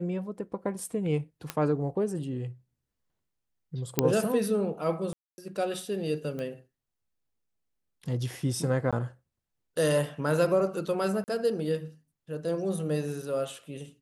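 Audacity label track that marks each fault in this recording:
1.500000	1.500000	click −14 dBFS
3.990000	3.990000	click −6 dBFS
5.130000	5.380000	drop-out 250 ms
6.390000	6.390000	click −24 dBFS
8.910000	8.930000	drop-out 16 ms
11.240000	11.280000	drop-out 39 ms

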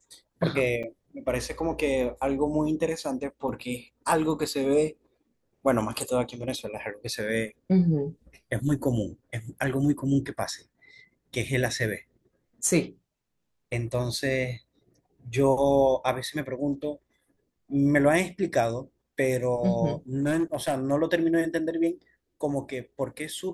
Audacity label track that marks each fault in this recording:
0.830000	0.840000	drop-out 6.3 ms
14.190000	14.190000	drop-out 2.5 ms
20.230000	20.920000	clipping −20.5 dBFS

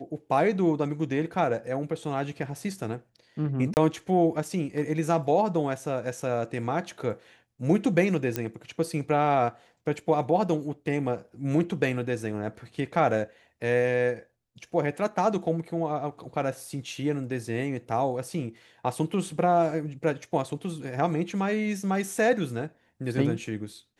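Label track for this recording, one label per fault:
3.740000	3.770000	drop-out 29 ms
8.360000	8.360000	click −11 dBFS

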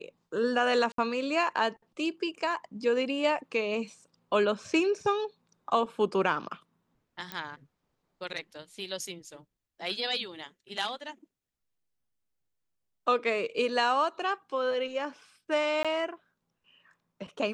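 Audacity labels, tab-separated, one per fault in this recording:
0.920000	0.980000	drop-out 63 ms
7.320000	7.320000	click −19 dBFS
15.830000	15.850000	drop-out 16 ms

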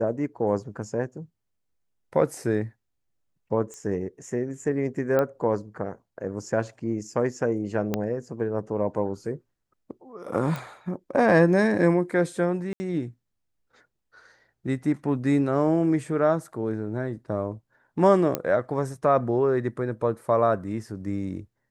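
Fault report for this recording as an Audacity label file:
3.740000	3.740000	click −27 dBFS
5.190000	5.190000	click −13 dBFS
7.940000	7.940000	click −12 dBFS
10.560000	10.560000	click
12.730000	12.800000	drop-out 70 ms
18.350000	18.350000	click −10 dBFS

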